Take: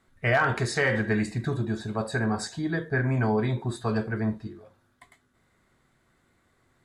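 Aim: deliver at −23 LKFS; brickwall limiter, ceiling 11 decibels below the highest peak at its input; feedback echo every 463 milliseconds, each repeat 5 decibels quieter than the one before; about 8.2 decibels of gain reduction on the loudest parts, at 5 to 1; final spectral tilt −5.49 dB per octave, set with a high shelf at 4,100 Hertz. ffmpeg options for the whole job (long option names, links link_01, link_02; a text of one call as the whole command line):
ffmpeg -i in.wav -af "highshelf=frequency=4100:gain=-3.5,acompressor=threshold=-29dB:ratio=5,alimiter=level_in=6dB:limit=-24dB:level=0:latency=1,volume=-6dB,aecho=1:1:463|926|1389|1852|2315|2778|3241:0.562|0.315|0.176|0.0988|0.0553|0.031|0.0173,volume=15dB" out.wav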